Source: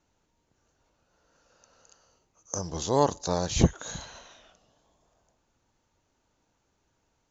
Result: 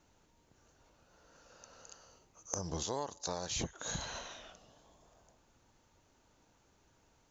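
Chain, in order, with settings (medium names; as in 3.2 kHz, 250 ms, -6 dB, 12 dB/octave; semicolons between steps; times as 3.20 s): 2.83–3.75 s: bass shelf 450 Hz -9 dB; compression 12:1, threshold -38 dBFS, peak gain reduction 19 dB; trim +4 dB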